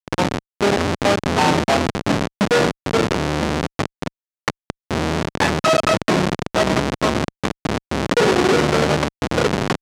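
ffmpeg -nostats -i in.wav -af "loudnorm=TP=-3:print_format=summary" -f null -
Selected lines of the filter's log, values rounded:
Input Integrated:    -19.4 LUFS
Input True Peak:      -4.5 dBTP
Input LRA:             2.3 LU
Input Threshold:     -29.5 LUFS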